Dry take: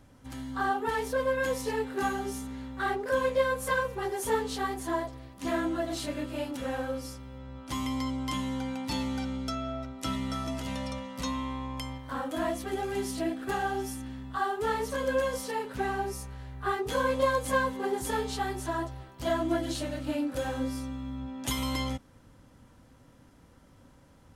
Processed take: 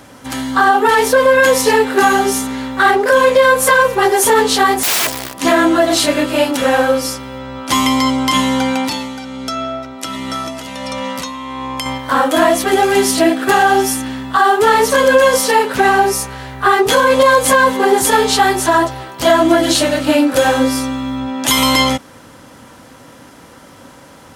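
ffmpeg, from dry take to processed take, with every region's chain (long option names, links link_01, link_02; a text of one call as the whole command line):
ffmpeg -i in.wav -filter_complex "[0:a]asettb=1/sr,asplit=3[link_01][link_02][link_03];[link_01]atrim=end=4.834[link_04];[link_02]atrim=start=4.83:end=5.34,asetpts=PTS-STARTPTS,afade=type=in:duration=0.004:curve=qsin,afade=type=out:start_time=0.506:duration=0.004:curve=qsin,aemphasis=mode=production:type=75kf,acrusher=bits=8:dc=4:mix=0:aa=0.000001,aeval=exprs='(mod(42.2*val(0)+1,2)-1)/42.2':channel_layout=same[link_05];[link_03]atrim=start=5.336[link_06];[link_04][link_05]acrossfade=duration=0.004:curve1=hsin:curve2=qsin[link_07];[link_07][link_06]acrossfade=duration=0.004:curve1=qsin:curve2=hsin,asettb=1/sr,asplit=3[link_08][link_09][link_10];[link_08]atrim=end=8.884[link_11];[link_09]atrim=start=8.88:end=11.86,asetpts=PTS-STARTPTS,afade=type=in:duration=0.004:curve=qsin,afade=type=out:start_time=2.976:duration=0.004:curve=qsin,acompressor=threshold=-36dB:ratio=12:attack=3.2:release=140:knee=1:detection=peak,tremolo=f=1.4:d=0.5[link_12];[link_10]atrim=start=11.856[link_13];[link_11][link_12]acrossfade=duration=0.004:curve1=hsin:curve2=qsin[link_14];[link_14][link_13]acrossfade=duration=0.004:curve1=qsin:curve2=hsin,highpass=frequency=450:poles=1,alimiter=level_in=24dB:limit=-1dB:release=50:level=0:latency=1,volume=-1dB" out.wav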